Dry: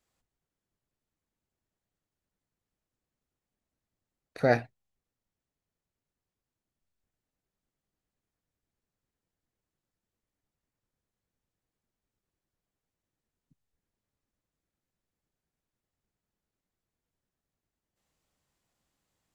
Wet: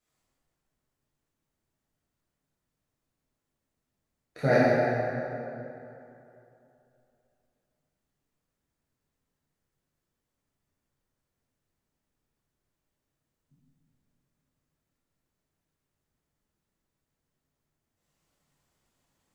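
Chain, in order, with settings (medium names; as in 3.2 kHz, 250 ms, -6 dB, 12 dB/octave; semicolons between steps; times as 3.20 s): plate-style reverb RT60 2.9 s, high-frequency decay 0.6×, DRR -10 dB; trim -5.5 dB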